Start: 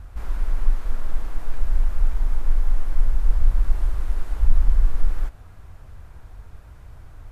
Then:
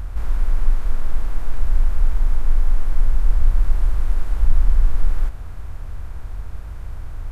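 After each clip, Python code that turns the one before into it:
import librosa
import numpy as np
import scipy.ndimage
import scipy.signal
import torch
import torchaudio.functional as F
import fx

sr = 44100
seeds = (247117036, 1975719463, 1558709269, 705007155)

y = fx.bin_compress(x, sr, power=0.6)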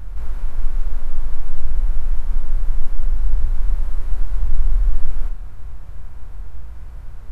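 y = fx.room_shoebox(x, sr, seeds[0], volume_m3=150.0, walls='furnished', distance_m=0.96)
y = y * librosa.db_to_amplitude(-6.5)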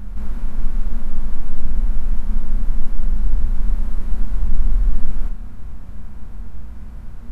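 y = fx.small_body(x, sr, hz=(220.0,), ring_ms=70, db=17)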